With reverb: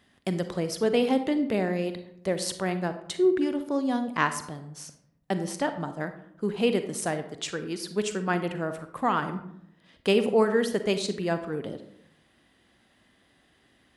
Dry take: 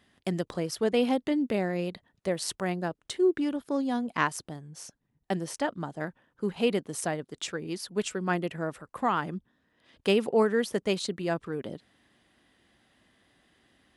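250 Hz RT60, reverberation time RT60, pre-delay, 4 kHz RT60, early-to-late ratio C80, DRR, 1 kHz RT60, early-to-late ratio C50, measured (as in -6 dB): 0.95 s, 0.75 s, 36 ms, 0.45 s, 13.0 dB, 9.0 dB, 0.70 s, 10.0 dB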